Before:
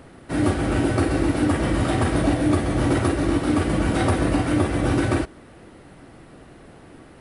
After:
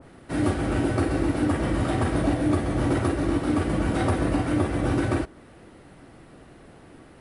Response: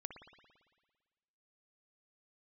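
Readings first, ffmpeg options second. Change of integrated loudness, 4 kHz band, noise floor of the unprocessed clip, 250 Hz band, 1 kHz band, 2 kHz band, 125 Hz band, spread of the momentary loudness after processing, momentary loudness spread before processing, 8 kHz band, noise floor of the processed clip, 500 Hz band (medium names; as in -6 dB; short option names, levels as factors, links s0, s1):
-3.0 dB, -5.5 dB, -47 dBFS, -3.0 dB, -3.0 dB, -4.0 dB, -3.0 dB, 2 LU, 2 LU, -5.5 dB, -50 dBFS, -3.0 dB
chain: -af "adynamicequalizer=threshold=0.0112:dfrequency=1900:dqfactor=0.7:tfrequency=1900:tqfactor=0.7:attack=5:release=100:ratio=0.375:range=1.5:mode=cutabove:tftype=highshelf,volume=0.708"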